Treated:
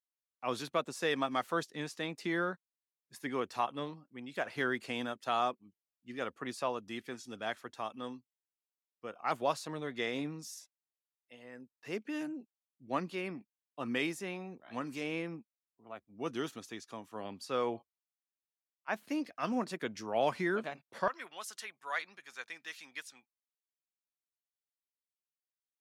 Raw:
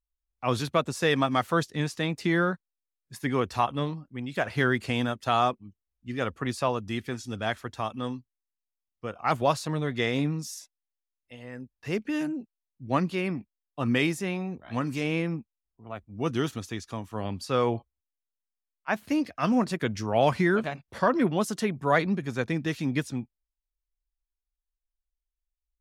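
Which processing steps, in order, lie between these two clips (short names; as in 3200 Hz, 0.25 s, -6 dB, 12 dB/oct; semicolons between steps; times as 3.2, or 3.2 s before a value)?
HPF 250 Hz 12 dB/oct, from 21.08 s 1300 Hz; gain -7.5 dB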